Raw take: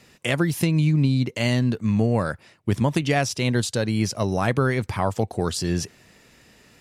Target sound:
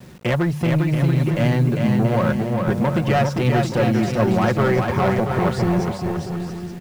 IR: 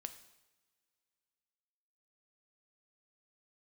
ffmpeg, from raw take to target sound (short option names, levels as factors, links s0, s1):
-filter_complex "[0:a]highpass=82,aemphasis=mode=reproduction:type=riaa,bandreject=f=50:t=h:w=6,bandreject=f=100:t=h:w=6,bandreject=f=150:t=h:w=6,bandreject=f=200:t=h:w=6,aecho=1:1:5.5:0.58,acrossover=split=460|2800[s0][s1][s2];[s0]acompressor=threshold=0.0562:ratio=5[s3];[s3][s1][s2]amix=inputs=3:normalize=0,asoftclip=type=tanh:threshold=0.0891,asplit=2[s4][s5];[s5]adynamicsmooth=sensitivity=3.5:basefreq=1300,volume=1.19[s6];[s4][s6]amix=inputs=2:normalize=0,acrusher=bits=7:mix=0:aa=0.000001,aecho=1:1:400|680|876|1013|1109:0.631|0.398|0.251|0.158|0.1"